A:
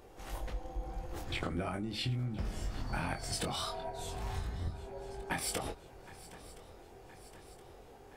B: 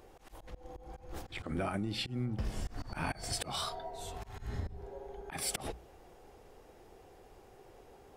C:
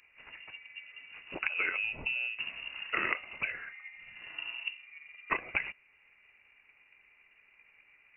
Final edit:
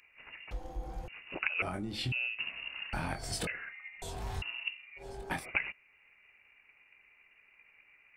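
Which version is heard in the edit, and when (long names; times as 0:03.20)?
C
0:00.51–0:01.08: punch in from A
0:01.62–0:02.12: punch in from A
0:02.93–0:03.47: punch in from A
0:04.02–0:04.42: punch in from A
0:05.01–0:05.41: punch in from A, crossfade 0.10 s
not used: B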